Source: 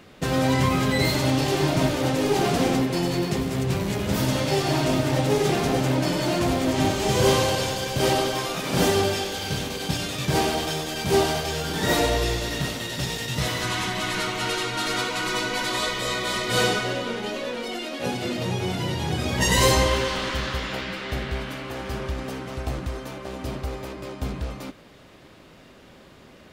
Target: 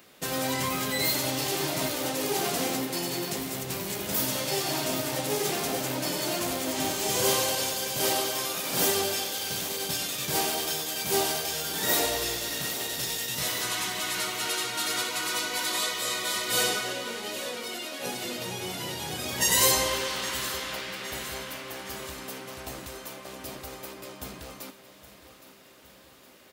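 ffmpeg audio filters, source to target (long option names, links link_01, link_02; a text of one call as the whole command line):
ffmpeg -i in.wav -af "aemphasis=mode=production:type=bsi,aecho=1:1:815|1630|2445|3260|4075|4890:0.2|0.112|0.0626|0.035|0.0196|0.011,volume=-6dB" out.wav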